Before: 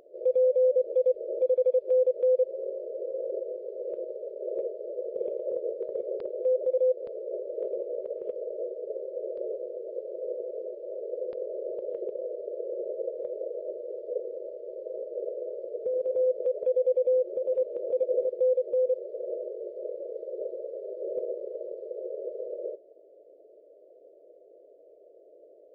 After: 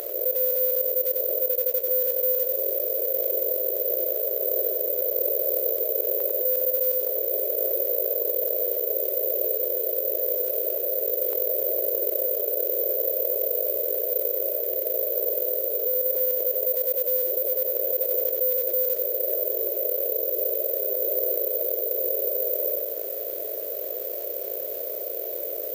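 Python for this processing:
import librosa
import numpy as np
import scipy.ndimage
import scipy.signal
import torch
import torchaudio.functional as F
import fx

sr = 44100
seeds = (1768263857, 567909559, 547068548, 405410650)

p1 = scipy.signal.sosfilt(scipy.signal.butter(2, 450.0, 'highpass', fs=sr, output='sos'), x)
p2 = fx.rider(p1, sr, range_db=3, speed_s=2.0)
p3 = p1 + (p2 * 10.0 ** (-2.5 / 20.0))
p4 = fx.quant_companded(p3, sr, bits=6)
p5 = p4 + fx.echo_feedback(p4, sr, ms=93, feedback_pct=31, wet_db=-7, dry=0)
p6 = (np.kron(p5[::3], np.eye(3)[0]) * 3)[:len(p5)]
p7 = fx.env_flatten(p6, sr, amount_pct=70)
y = p7 * 10.0 ** (-8.5 / 20.0)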